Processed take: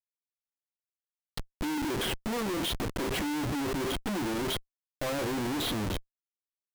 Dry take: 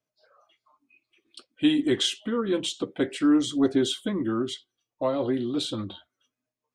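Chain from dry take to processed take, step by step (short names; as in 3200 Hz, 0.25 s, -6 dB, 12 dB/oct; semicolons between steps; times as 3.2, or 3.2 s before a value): treble ducked by the level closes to 1500 Hz, closed at -20.5 dBFS; Schmitt trigger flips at -40 dBFS; gain -3 dB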